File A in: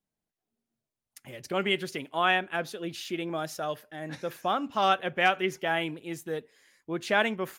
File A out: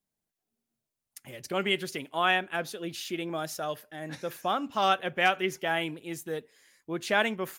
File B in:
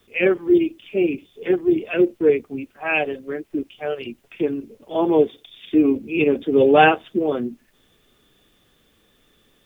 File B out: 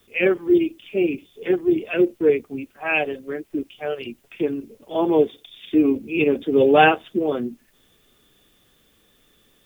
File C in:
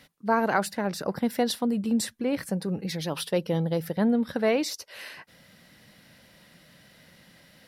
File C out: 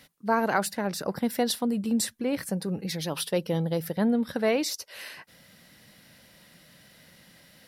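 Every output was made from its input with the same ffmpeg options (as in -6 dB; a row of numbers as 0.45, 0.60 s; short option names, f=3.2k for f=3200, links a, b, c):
-af "highshelf=f=5.6k:g=6,volume=-1dB"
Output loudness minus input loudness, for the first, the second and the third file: -0.5, -1.0, -0.5 LU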